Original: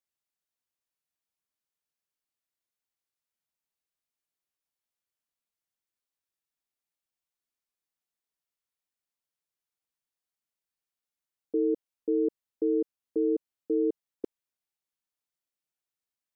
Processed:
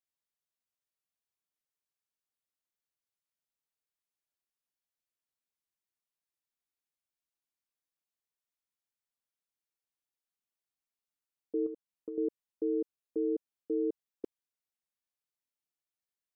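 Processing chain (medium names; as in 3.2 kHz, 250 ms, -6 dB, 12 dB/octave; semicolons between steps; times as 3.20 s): 11.66–12.18 s: compression 6:1, threshold -34 dBFS, peak gain reduction 10.5 dB; trim -5 dB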